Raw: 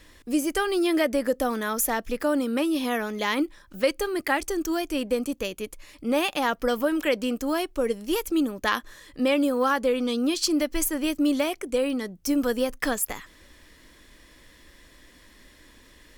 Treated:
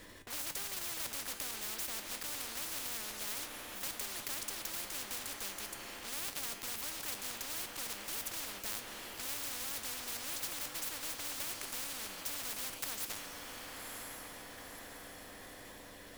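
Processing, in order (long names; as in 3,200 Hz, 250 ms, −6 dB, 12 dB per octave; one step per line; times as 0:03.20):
one scale factor per block 3 bits
tilt shelving filter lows +3 dB
mains-hum notches 60/120/180/240/300 Hz
tuned comb filter 99 Hz, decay 0.28 s, harmonics all, mix 60%
on a send: feedback delay with all-pass diffusion 1,006 ms, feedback 50%, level −14 dB
on the sum: every bin compressed towards the loudest bin 10 to 1
level −6 dB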